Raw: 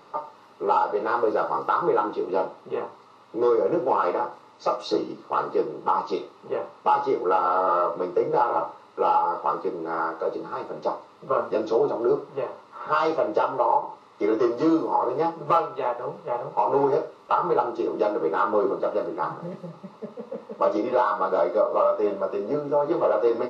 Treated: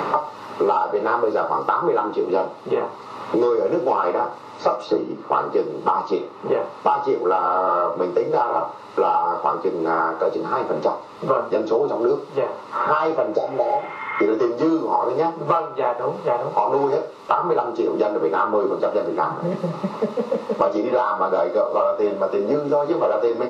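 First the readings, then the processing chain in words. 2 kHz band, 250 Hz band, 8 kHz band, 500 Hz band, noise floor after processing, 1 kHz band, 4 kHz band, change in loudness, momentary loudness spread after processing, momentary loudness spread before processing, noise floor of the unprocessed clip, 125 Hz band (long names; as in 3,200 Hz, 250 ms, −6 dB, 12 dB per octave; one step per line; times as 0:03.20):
+4.5 dB, +4.0 dB, can't be measured, +3.5 dB, −38 dBFS, +3.0 dB, +2.5 dB, +3.0 dB, 5 LU, 11 LU, −52 dBFS, +6.0 dB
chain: healed spectral selection 0:13.34–0:14.21, 860–3,600 Hz both
multiband upward and downward compressor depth 100%
level +2.5 dB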